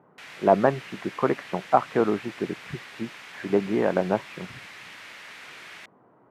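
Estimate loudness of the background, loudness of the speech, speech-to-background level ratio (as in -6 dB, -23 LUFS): -42.0 LUFS, -25.5 LUFS, 16.5 dB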